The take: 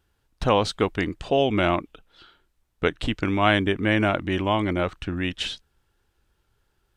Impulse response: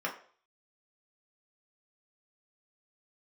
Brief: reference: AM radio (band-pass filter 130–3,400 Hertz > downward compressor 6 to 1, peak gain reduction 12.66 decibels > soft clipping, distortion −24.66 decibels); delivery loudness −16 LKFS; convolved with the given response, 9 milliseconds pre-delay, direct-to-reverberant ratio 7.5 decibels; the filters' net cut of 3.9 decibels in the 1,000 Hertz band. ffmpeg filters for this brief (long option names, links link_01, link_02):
-filter_complex "[0:a]equalizer=frequency=1000:width_type=o:gain=-5.5,asplit=2[link_01][link_02];[1:a]atrim=start_sample=2205,adelay=9[link_03];[link_02][link_03]afir=irnorm=-1:irlink=0,volume=-14dB[link_04];[link_01][link_04]amix=inputs=2:normalize=0,highpass=130,lowpass=3400,acompressor=threshold=-29dB:ratio=6,asoftclip=threshold=-18dB,volume=19dB"